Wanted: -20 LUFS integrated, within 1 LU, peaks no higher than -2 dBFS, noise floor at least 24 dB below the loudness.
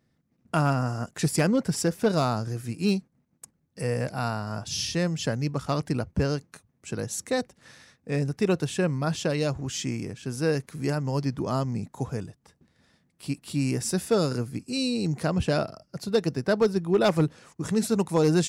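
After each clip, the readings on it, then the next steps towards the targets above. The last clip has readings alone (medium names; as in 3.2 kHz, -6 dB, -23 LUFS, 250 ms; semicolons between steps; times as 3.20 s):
clipped samples 0.2%; clipping level -14.5 dBFS; loudness -27.5 LUFS; peak level -14.5 dBFS; loudness target -20.0 LUFS
-> clip repair -14.5 dBFS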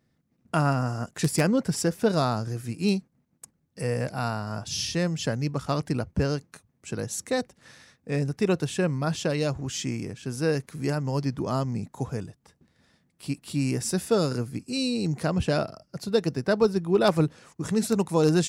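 clipped samples 0.0%; loudness -27.5 LUFS; peak level -5.5 dBFS; loudness target -20.0 LUFS
-> trim +7.5 dB; peak limiter -2 dBFS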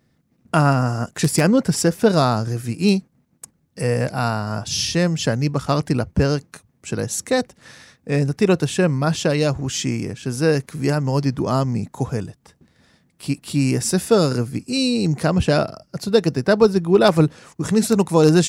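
loudness -20.0 LUFS; peak level -2.0 dBFS; noise floor -64 dBFS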